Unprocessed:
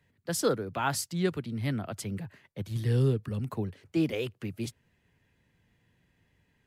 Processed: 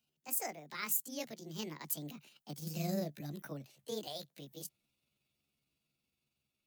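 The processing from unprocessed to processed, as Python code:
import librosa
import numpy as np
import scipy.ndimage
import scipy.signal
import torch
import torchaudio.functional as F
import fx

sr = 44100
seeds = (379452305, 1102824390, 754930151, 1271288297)

y = fx.pitch_heads(x, sr, semitones=6.5)
y = fx.doppler_pass(y, sr, speed_mps=18, closest_m=22.0, pass_at_s=2.59)
y = scipy.signal.lfilter([1.0, -0.8], [1.0], y)
y = F.gain(torch.from_numpy(y), 4.5).numpy()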